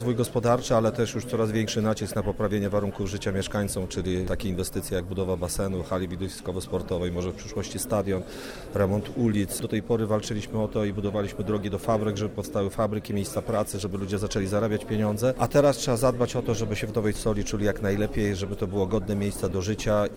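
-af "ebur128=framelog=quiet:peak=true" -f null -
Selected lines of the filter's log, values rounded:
Integrated loudness:
  I:         -27.2 LUFS
  Threshold: -37.2 LUFS
Loudness range:
  LRA:         4.4 LU
  Threshold: -47.4 LUFS
  LRA low:   -29.6 LUFS
  LRA high:  -25.2 LUFS
True peak:
  Peak:       -8.4 dBFS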